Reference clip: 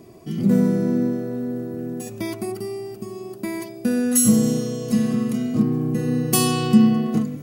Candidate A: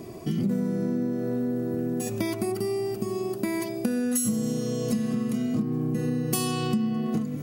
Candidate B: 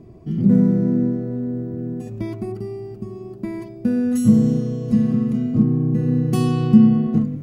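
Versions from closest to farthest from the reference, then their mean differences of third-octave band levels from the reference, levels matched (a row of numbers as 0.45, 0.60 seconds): A, B; 4.5, 7.5 decibels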